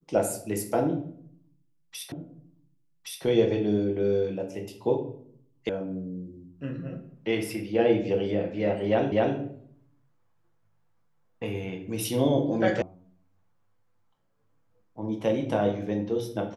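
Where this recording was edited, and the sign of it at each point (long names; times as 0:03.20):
0:02.12: the same again, the last 1.12 s
0:05.69: cut off before it has died away
0:09.12: the same again, the last 0.25 s
0:12.82: cut off before it has died away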